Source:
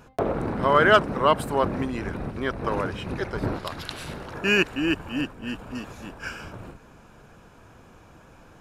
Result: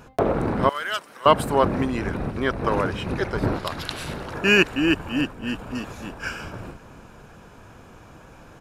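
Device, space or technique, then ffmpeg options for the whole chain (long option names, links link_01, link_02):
ducked delay: -filter_complex "[0:a]asettb=1/sr,asplit=3[link_01][link_02][link_03];[link_01]atrim=end=0.694[link_04];[link_02]atrim=start=0.69:end=1.26,asetpts=PTS-STARTPTS,afade=type=in:duration=0.004:curve=qsin,afade=type=out:start_time=0.566:duration=0.004:curve=qsin,aderivative[link_05];[link_03]atrim=start=1.256[link_06];[link_04][link_05]acrossfade=duration=0.004:curve1=hsin:curve2=qsin[link_07];[link_07][link_06]acrossfade=duration=0.004:curve1=qsin:curve2=hsin,asplit=3[link_08][link_09][link_10];[link_09]adelay=301,volume=-8dB[link_11];[link_10]apad=whole_len=392913[link_12];[link_11][link_12]sidechaincompress=threshold=-48dB:ratio=8:attack=16:release=424[link_13];[link_08][link_13]amix=inputs=2:normalize=0,volume=4dB"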